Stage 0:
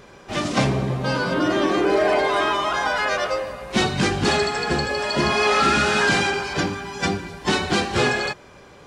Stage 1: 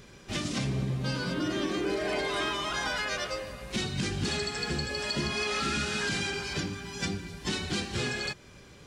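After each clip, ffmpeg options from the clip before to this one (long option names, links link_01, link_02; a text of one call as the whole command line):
ffmpeg -i in.wav -af "equalizer=frequency=800:width=0.54:gain=-12.5,alimiter=limit=-21dB:level=0:latency=1:release=443" out.wav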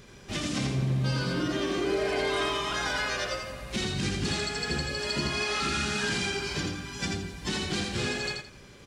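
ffmpeg -i in.wav -af "aecho=1:1:84|168|252:0.631|0.158|0.0394" out.wav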